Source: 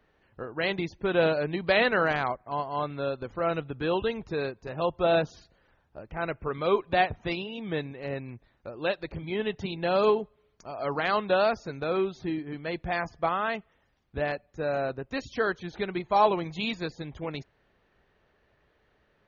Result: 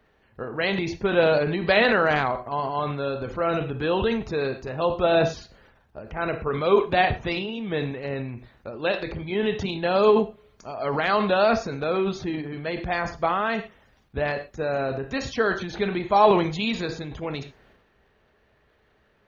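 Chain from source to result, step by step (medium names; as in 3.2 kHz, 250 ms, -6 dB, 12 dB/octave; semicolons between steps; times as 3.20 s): gated-style reverb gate 150 ms falling, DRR 10.5 dB; transient shaper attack +1 dB, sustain +8 dB; trim +3 dB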